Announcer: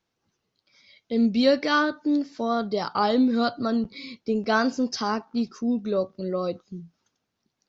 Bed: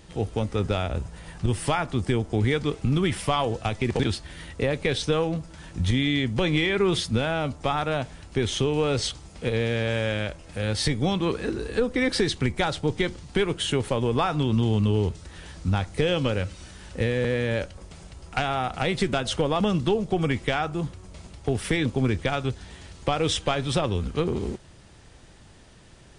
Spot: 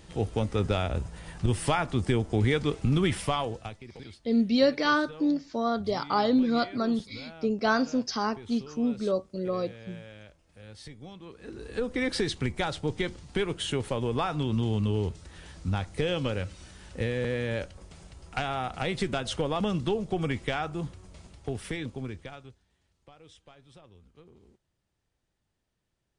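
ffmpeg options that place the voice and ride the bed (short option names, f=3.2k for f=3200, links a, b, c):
-filter_complex "[0:a]adelay=3150,volume=-2.5dB[a];[1:a]volume=14.5dB,afade=t=out:st=3.12:d=0.71:silence=0.105925,afade=t=in:st=11.36:d=0.57:silence=0.158489,afade=t=out:st=20.98:d=1.65:silence=0.0595662[b];[a][b]amix=inputs=2:normalize=0"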